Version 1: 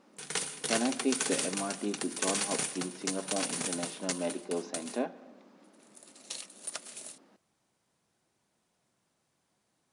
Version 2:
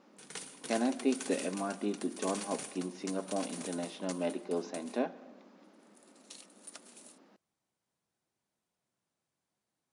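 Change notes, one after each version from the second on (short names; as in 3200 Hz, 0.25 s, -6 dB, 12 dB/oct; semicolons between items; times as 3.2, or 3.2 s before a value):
background -10.5 dB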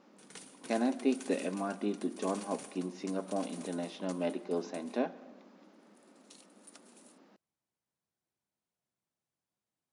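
background -6.5 dB; master: add bell 66 Hz +3 dB 2.3 oct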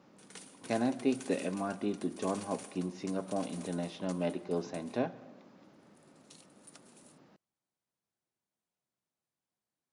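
speech: remove brick-wall FIR high-pass 180 Hz; master: add bell 66 Hz -3 dB 2.3 oct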